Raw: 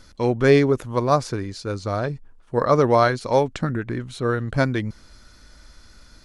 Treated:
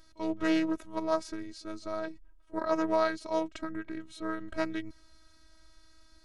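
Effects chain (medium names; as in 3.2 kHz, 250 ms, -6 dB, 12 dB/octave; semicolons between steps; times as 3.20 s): robot voice 320 Hz; pre-echo 39 ms -22 dB; loudspeaker Doppler distortion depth 0.23 ms; trim -8.5 dB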